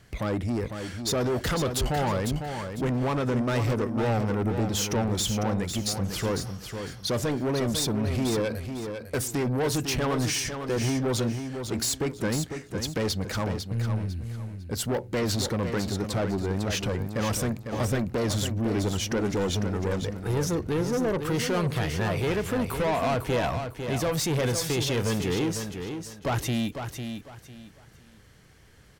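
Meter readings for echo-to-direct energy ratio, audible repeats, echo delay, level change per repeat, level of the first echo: −7.0 dB, 3, 501 ms, −11.5 dB, −7.5 dB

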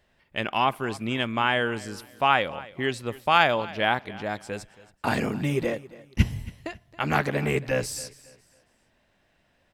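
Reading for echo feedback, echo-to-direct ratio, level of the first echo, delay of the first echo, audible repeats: 31%, −19.0 dB, −19.5 dB, 275 ms, 2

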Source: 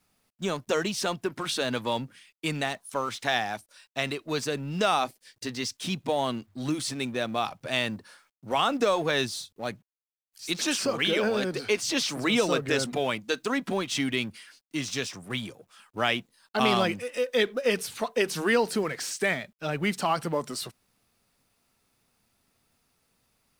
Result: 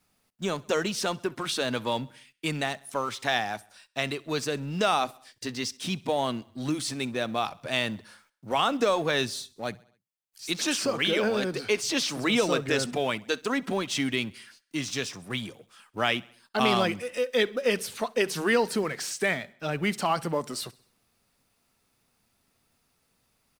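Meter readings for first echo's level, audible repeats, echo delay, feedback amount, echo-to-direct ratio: −24.0 dB, 3, 66 ms, 55%, −22.5 dB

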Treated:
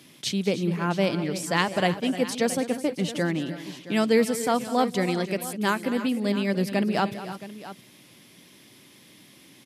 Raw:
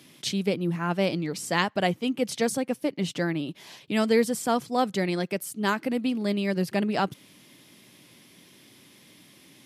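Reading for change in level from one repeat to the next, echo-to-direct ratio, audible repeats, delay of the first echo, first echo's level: repeats not evenly spaced, −9.5 dB, 3, 200 ms, −15.0 dB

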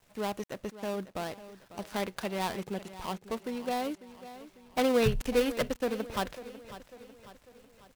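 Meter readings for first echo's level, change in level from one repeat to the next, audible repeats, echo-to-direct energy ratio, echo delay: −15.0 dB, −6.0 dB, 4, −13.5 dB, 547 ms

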